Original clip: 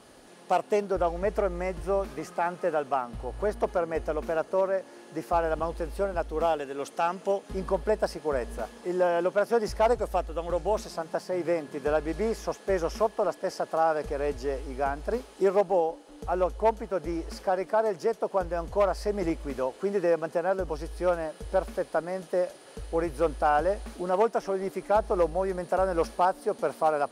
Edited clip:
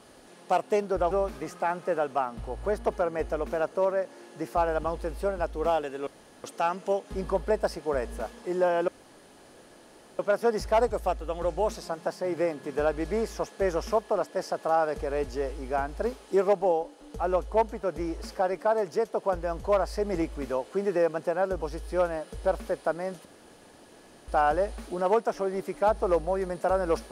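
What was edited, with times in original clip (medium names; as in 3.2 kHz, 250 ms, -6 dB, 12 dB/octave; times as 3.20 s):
1.11–1.87 s: delete
6.83 s: insert room tone 0.37 s
9.27 s: insert room tone 1.31 s
22.33–23.36 s: room tone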